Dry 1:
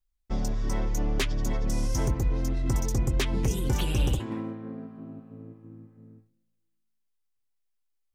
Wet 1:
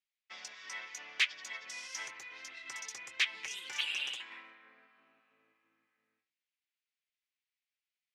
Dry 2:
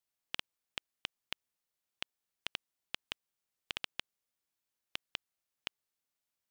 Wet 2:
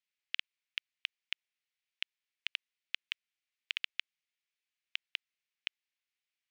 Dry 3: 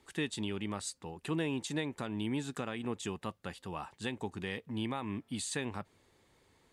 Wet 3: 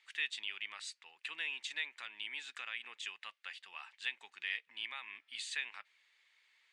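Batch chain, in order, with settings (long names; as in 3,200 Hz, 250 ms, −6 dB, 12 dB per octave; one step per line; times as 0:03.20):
four-pole ladder band-pass 2,700 Hz, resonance 40%
level +12.5 dB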